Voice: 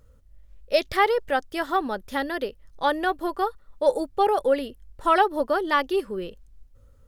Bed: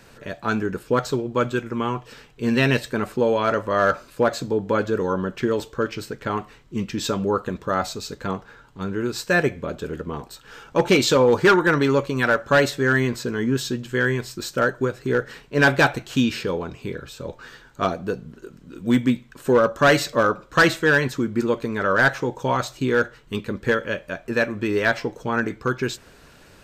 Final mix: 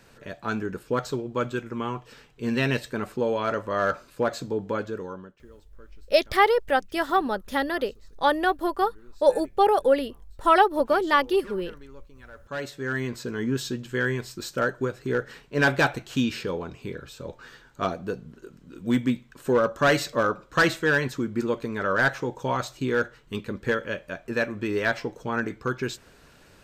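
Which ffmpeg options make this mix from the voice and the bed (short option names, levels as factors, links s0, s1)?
-filter_complex "[0:a]adelay=5400,volume=1.19[s0];[1:a]volume=8.91,afade=t=out:st=4.61:d=0.77:silence=0.0668344,afade=t=in:st=12.32:d=1.13:silence=0.0595662[s1];[s0][s1]amix=inputs=2:normalize=0"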